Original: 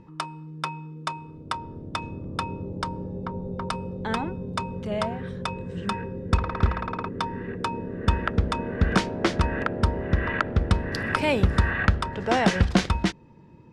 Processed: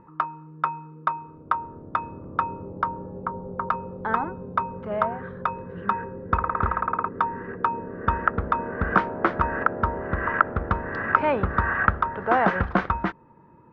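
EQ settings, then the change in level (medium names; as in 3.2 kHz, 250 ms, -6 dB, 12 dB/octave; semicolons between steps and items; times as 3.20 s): resonant low-pass 1.3 kHz, resonance Q 2.3; bass shelf 320 Hz -8.5 dB; +1.5 dB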